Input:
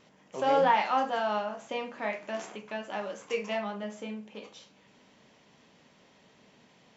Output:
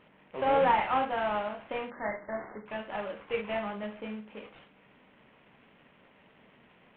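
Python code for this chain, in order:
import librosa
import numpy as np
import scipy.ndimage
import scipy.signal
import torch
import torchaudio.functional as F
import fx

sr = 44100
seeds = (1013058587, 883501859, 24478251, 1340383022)

y = fx.cvsd(x, sr, bps=16000)
y = fx.brickwall_lowpass(y, sr, high_hz=2200.0, at=(1.9, 2.66))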